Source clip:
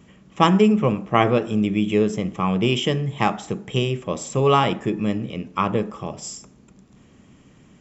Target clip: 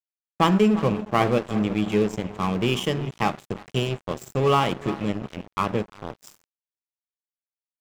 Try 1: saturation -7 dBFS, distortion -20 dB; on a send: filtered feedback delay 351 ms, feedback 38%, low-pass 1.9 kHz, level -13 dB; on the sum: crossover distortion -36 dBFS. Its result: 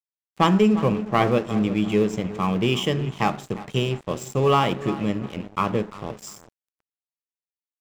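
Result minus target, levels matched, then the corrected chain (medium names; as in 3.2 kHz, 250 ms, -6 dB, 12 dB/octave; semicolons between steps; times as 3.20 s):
crossover distortion: distortion -6 dB
saturation -7 dBFS, distortion -20 dB; on a send: filtered feedback delay 351 ms, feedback 38%, low-pass 1.9 kHz, level -13 dB; on the sum: crossover distortion -29 dBFS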